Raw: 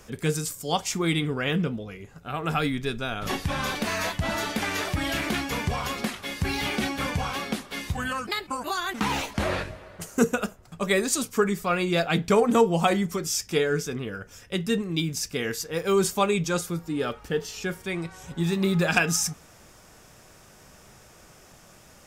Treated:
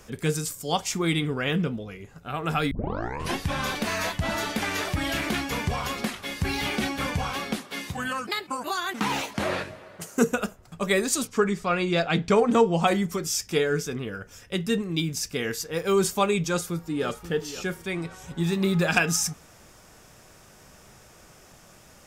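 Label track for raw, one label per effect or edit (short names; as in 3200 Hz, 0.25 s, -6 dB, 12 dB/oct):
2.710000	2.710000	tape start 0.65 s
7.580000	10.270000	HPF 130 Hz
11.270000	12.870000	LPF 6800 Hz
16.480000	17.080000	echo throw 0.53 s, feedback 35%, level -13.5 dB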